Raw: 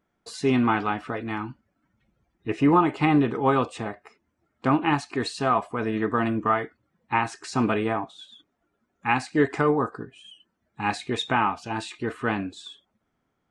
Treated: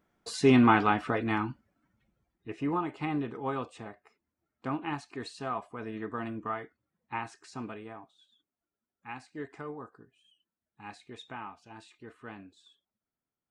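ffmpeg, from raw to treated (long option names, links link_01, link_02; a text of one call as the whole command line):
ffmpeg -i in.wav -af "volume=1dB,afade=type=out:start_time=1.32:duration=1.18:silence=0.223872,afade=type=out:start_time=7.22:duration=0.57:silence=0.446684" out.wav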